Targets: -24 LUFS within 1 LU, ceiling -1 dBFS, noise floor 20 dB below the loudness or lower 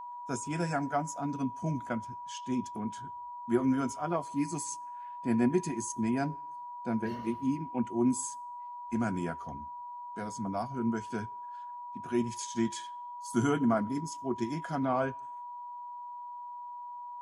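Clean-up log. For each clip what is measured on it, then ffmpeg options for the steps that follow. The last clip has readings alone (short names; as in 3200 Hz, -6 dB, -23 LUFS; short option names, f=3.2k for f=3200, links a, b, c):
steady tone 970 Hz; tone level -40 dBFS; loudness -34.0 LUFS; peak -15.0 dBFS; loudness target -24.0 LUFS
-> -af "bandreject=f=970:w=30"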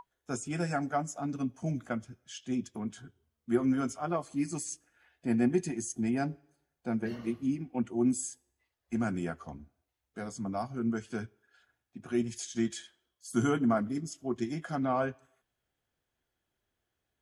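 steady tone none; loudness -33.5 LUFS; peak -15.5 dBFS; loudness target -24.0 LUFS
-> -af "volume=9.5dB"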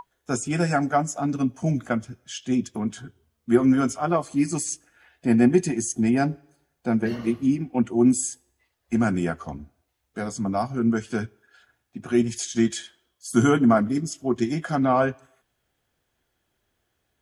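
loudness -24.0 LUFS; peak -6.0 dBFS; noise floor -76 dBFS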